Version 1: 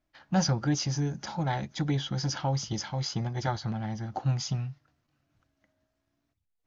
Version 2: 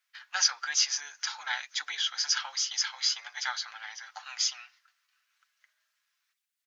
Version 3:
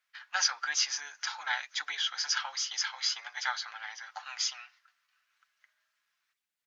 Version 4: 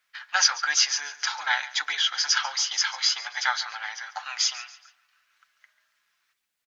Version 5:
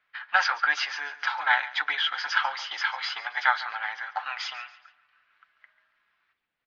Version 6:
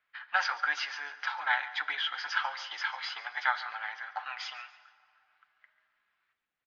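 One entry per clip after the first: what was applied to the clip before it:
high-pass filter 1,400 Hz 24 dB per octave; comb filter 6.8 ms, depth 40%; level +8 dB
high-shelf EQ 3,200 Hz −8 dB; level +2.5 dB
repeating echo 140 ms, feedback 40%, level −17.5 dB; level +7.5 dB
high-frequency loss of the air 430 metres; level +6 dB
downsampling to 16,000 Hz; dense smooth reverb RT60 2.4 s, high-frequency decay 0.6×, DRR 15.5 dB; level −6 dB

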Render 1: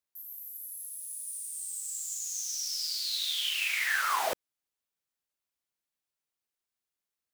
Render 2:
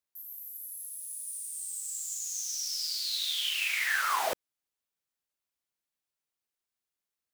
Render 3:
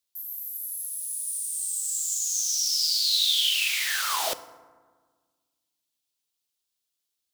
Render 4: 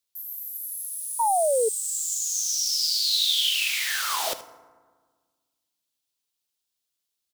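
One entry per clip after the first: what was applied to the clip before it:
no processing that can be heard
high shelf with overshoot 2,600 Hz +7.5 dB, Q 1.5; feedback delay network reverb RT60 1.5 s, low-frequency decay 1.35×, high-frequency decay 0.45×, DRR 12.5 dB
single-tap delay 77 ms −16 dB; sound drawn into the spectrogram fall, 0:01.19–0:01.69, 430–960 Hz −22 dBFS

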